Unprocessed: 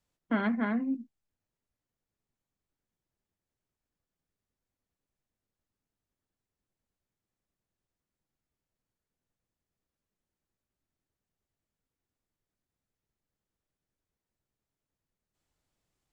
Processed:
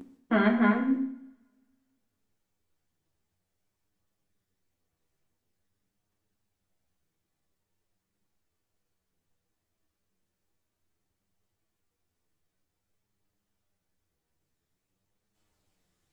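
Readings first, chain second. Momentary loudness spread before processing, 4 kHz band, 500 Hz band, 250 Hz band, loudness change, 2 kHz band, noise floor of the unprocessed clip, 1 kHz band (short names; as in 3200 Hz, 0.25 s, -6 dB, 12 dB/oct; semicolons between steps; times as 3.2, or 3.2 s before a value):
6 LU, +7.0 dB, +8.0 dB, +5.0 dB, +5.5 dB, +6.5 dB, under -85 dBFS, +7.0 dB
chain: reverse echo 0.942 s -13.5 dB; chorus voices 2, 0.49 Hz, delay 11 ms, depth 1.6 ms; two-slope reverb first 0.71 s, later 1.9 s, from -27 dB, DRR 4.5 dB; gain +8 dB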